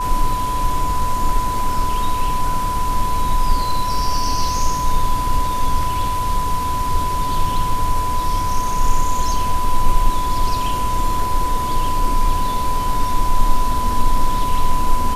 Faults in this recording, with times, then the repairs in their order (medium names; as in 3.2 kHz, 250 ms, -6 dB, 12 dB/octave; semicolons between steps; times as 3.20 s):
whine 1 kHz -20 dBFS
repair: band-stop 1 kHz, Q 30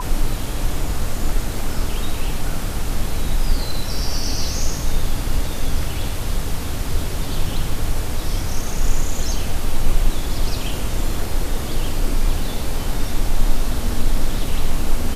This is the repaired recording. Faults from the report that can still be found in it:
nothing left